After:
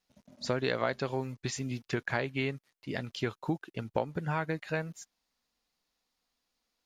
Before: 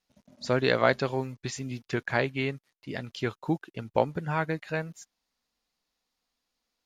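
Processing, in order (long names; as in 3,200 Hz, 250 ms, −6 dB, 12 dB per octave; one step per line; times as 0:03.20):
downward compressor 4 to 1, threshold −27 dBFS, peak gain reduction 9.5 dB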